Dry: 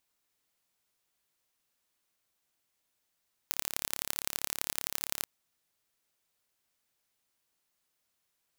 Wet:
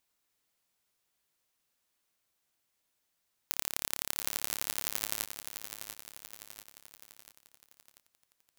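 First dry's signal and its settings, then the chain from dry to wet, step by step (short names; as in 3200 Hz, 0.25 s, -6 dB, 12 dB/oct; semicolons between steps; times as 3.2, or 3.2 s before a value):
pulse train 35.3/s, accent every 3, -2.5 dBFS 1.75 s
lo-fi delay 0.69 s, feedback 55%, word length 6-bit, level -9 dB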